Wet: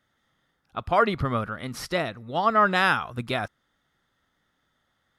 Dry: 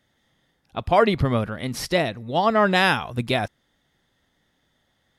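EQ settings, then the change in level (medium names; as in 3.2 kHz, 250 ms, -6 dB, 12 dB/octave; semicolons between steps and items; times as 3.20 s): peaking EQ 1.3 kHz +10.5 dB 0.58 oct; -6.0 dB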